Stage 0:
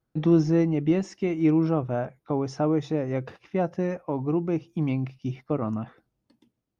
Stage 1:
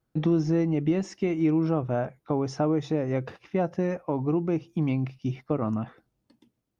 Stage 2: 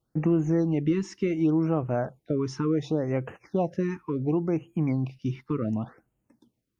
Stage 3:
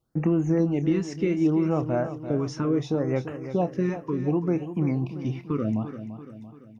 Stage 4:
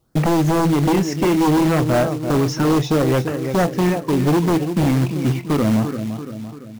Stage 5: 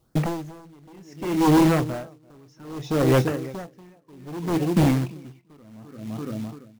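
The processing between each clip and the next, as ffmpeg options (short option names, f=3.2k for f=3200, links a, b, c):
-af "acompressor=threshold=-23dB:ratio=2.5,volume=1.5dB"
-af "afftfilt=real='re*(1-between(b*sr/1024,590*pow(4700/590,0.5+0.5*sin(2*PI*0.69*pts/sr))/1.41,590*pow(4700/590,0.5+0.5*sin(2*PI*0.69*pts/sr))*1.41))':imag='im*(1-between(b*sr/1024,590*pow(4700/590,0.5+0.5*sin(2*PI*0.69*pts/sr))/1.41,590*pow(4700/590,0.5+0.5*sin(2*PI*0.69*pts/sr))*1.41))':win_size=1024:overlap=0.75"
-filter_complex "[0:a]asplit=2[a][b];[b]adelay=28,volume=-13.5dB[c];[a][c]amix=inputs=2:normalize=0,asplit=2[d][e];[e]aecho=0:1:340|680|1020|1360|1700:0.282|0.144|0.0733|0.0374|0.0191[f];[d][f]amix=inputs=2:normalize=0,volume=1dB"
-af "aeval=exprs='0.237*sin(PI/2*2.51*val(0)/0.237)':c=same,acrusher=bits=4:mode=log:mix=0:aa=0.000001"
-af "aeval=exprs='val(0)*pow(10,-33*(0.5-0.5*cos(2*PI*0.63*n/s))/20)':c=same"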